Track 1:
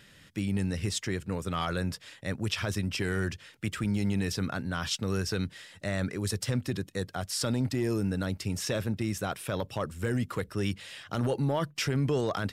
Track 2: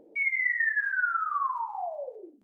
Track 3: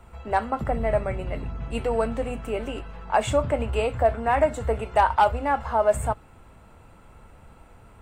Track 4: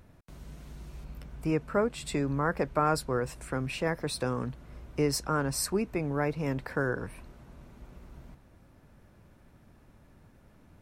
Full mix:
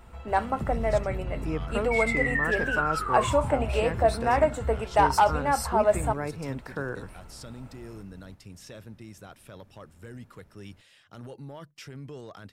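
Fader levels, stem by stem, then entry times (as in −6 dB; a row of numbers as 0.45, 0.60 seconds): −14.0, −1.0, −1.5, −3.5 decibels; 0.00, 1.75, 0.00, 0.00 seconds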